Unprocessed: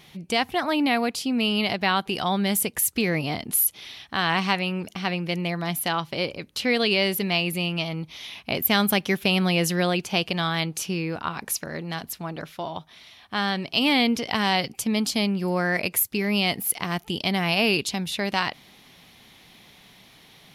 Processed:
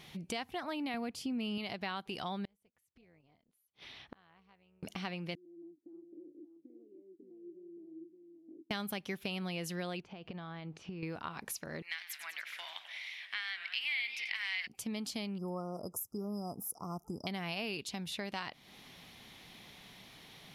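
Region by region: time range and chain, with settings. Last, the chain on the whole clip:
0.94–1.58 s: bass shelf 240 Hz +11 dB + band-stop 3.9 kHz, Q 13
2.45–4.83 s: low-pass 2 kHz 6 dB/octave + inverted gate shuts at -29 dBFS, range -35 dB + AM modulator 260 Hz, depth 40%
5.35–8.71 s: compression 4:1, threshold -34 dBFS + Butterworth band-pass 320 Hz, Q 5.4 + delay 570 ms -6.5 dB
10.00–11.03 s: compression 16:1, threshold -32 dBFS + tape spacing loss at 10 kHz 31 dB
11.82–14.67 s: resonant high-pass 2.1 kHz, resonance Q 5.4 + modulated delay 94 ms, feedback 69%, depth 194 cents, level -13 dB
15.38–17.27 s: brick-wall FIR band-stop 1.4–4.9 kHz + tape noise reduction on one side only decoder only
whole clip: compression 3:1, threshold -37 dBFS; treble shelf 11 kHz -4 dB; trim -3 dB

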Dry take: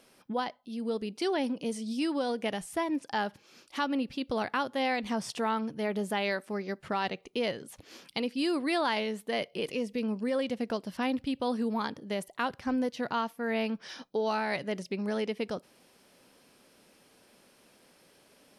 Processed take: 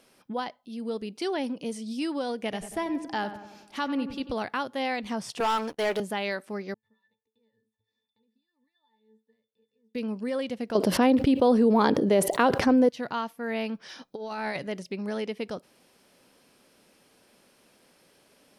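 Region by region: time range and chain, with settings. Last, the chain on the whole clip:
2.42–4.34 s: bass shelf 75 Hz +11.5 dB + filtered feedback delay 93 ms, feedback 60%, low-pass 2.2 kHz, level -10.5 dB
5.40–6.00 s: high-pass 460 Hz + waveshaping leveller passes 3 + gate -44 dBFS, range -32 dB
6.74–9.95 s: pre-emphasis filter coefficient 0.9 + compression 8:1, threshold -51 dBFS + pitch-class resonator A, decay 0.21 s
10.75–12.89 s: peaking EQ 420 Hz +11.5 dB 2.1 oct + level flattener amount 70%
14.08–14.67 s: band-stop 3 kHz, Q 17 + compressor with a negative ratio -32 dBFS, ratio -0.5
whole clip: none

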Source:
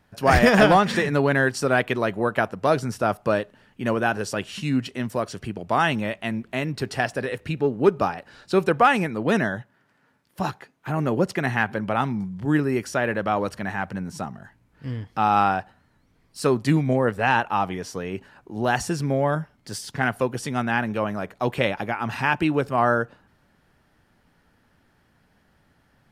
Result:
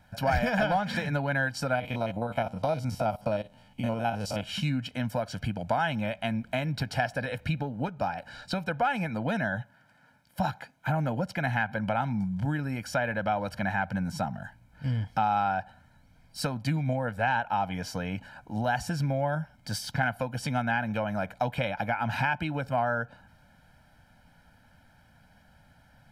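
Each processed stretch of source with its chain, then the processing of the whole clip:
1.75–4.43 s: spectrogram pixelated in time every 50 ms + peaking EQ 1.6 kHz -14 dB 0.33 oct
whole clip: compression 4:1, threshold -28 dBFS; dynamic bell 8.3 kHz, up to -7 dB, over -58 dBFS, Q 1.2; comb 1.3 ms, depth 90%

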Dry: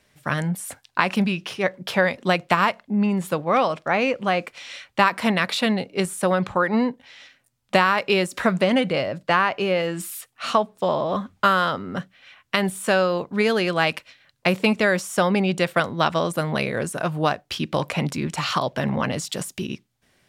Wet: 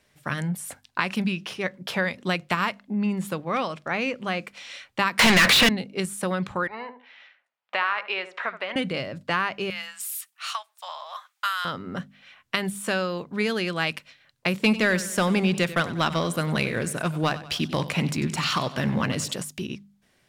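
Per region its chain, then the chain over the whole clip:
5.19–5.69 s: overdrive pedal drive 36 dB, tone 4.2 kHz, clips at -5.5 dBFS + three bands compressed up and down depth 70%
6.67–8.76 s: Butterworth band-pass 1.4 kHz, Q 0.61 + filtered feedback delay 73 ms, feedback 27%, low-pass 1.3 kHz, level -11 dB
9.70–11.65 s: Bessel high-pass 1.4 kHz, order 8 + treble shelf 9.2 kHz +7.5 dB
14.63–19.33 s: waveshaping leveller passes 1 + modulated delay 95 ms, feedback 46%, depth 62 cents, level -15.5 dB
whole clip: dynamic bell 680 Hz, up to -7 dB, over -32 dBFS, Q 0.87; de-hum 50.1 Hz, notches 5; trim -2.5 dB

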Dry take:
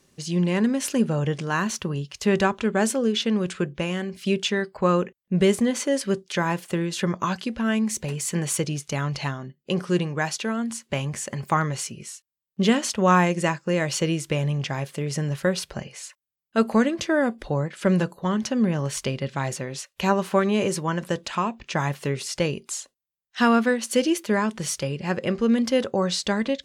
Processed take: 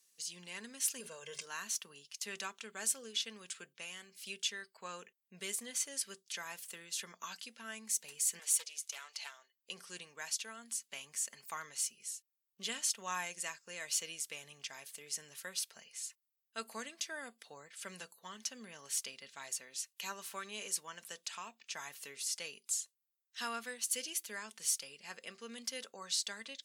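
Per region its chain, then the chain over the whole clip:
1.00–1.46 s: hum notches 50/100/150 Hz + comb 1.9 ms, depth 74% + decay stretcher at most 60 dB/s
8.39–9.56 s: high-pass 530 Hz 24 dB/octave + loudspeaker Doppler distortion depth 0.26 ms
whole clip: high-pass 120 Hz; differentiator; comb 4.4 ms, depth 38%; trim -4.5 dB

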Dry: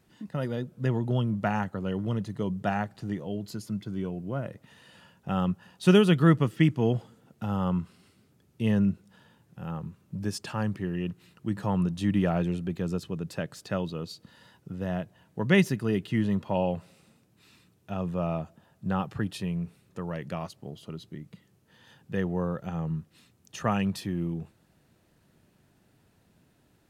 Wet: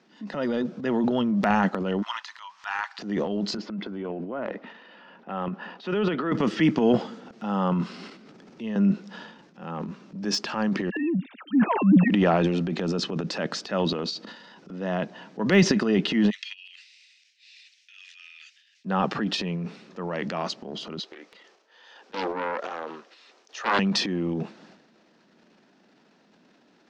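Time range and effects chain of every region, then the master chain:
2.02–2.99 s: elliptic high-pass 920 Hz, stop band 50 dB + upward compressor, threshold -57 dBFS
3.57–6.32 s: band-pass 230–2500 Hz + compression 2:1, threshold -34 dBFS
7.82–8.76 s: treble shelf 8.3 kHz +6 dB + three bands compressed up and down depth 70%
10.90–12.10 s: formants replaced by sine waves + bass shelf 220 Hz +8 dB + phase dispersion lows, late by 71 ms, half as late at 1.2 kHz
16.30–18.85 s: steep high-pass 2 kHz 48 dB/octave + compressor with a negative ratio -54 dBFS, ratio -0.5
20.99–23.79 s: high-pass 430 Hz 24 dB/octave + loudspeaker Doppler distortion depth 0.8 ms
whole clip: elliptic band-pass 210–5600 Hz, stop band 40 dB; de-esser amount 90%; transient shaper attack -5 dB, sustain +11 dB; trim +7 dB

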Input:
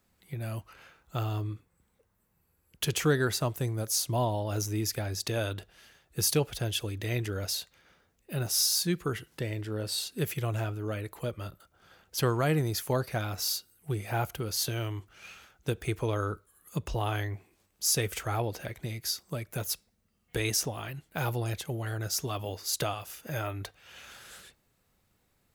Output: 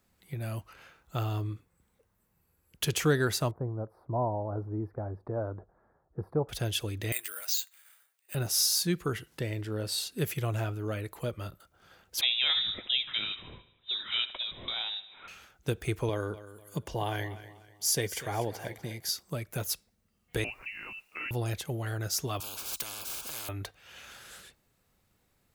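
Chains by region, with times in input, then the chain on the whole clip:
3.51–6.49 s: inverse Chebyshev low-pass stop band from 2.7 kHz, stop band 50 dB + tilt shelf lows -3.5 dB, about 710 Hz
7.12–8.35 s: high-pass 1.3 kHz + careless resampling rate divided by 4×, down filtered, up zero stuff
12.21–15.28 s: bass shelf 200 Hz -5 dB + feedback delay 75 ms, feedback 59%, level -16 dB + frequency inversion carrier 3.8 kHz
16.09–19.09 s: high-pass 42 Hz + comb of notches 1.3 kHz + feedback delay 245 ms, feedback 35%, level -15 dB
20.44–21.31 s: frequency inversion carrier 2.8 kHz + compression 1.5:1, threshold -47 dBFS + word length cut 12-bit, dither triangular
22.40–23.49 s: Butterworth band-stop 1.9 kHz, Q 1.6 + peaking EQ 210 Hz -13.5 dB 2.7 oct + spectrum-flattening compressor 10:1
whole clip: none

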